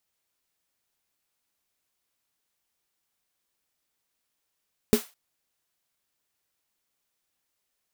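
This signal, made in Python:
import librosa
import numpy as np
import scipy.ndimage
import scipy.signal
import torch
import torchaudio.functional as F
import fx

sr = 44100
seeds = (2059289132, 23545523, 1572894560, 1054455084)

y = fx.drum_snare(sr, seeds[0], length_s=0.21, hz=230.0, second_hz=420.0, noise_db=-12.0, noise_from_hz=510.0, decay_s=0.11, noise_decay_s=0.3)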